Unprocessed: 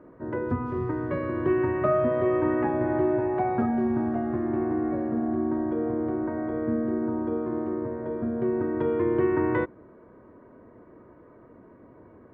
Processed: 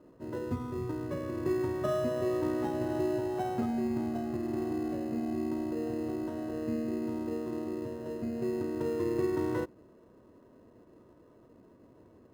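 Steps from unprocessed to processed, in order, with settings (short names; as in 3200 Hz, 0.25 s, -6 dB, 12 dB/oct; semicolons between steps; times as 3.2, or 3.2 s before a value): high shelf 2000 Hz -9 dB; in parallel at -11.5 dB: sample-rate reducer 2300 Hz, jitter 0%; on the sum: gain -8 dB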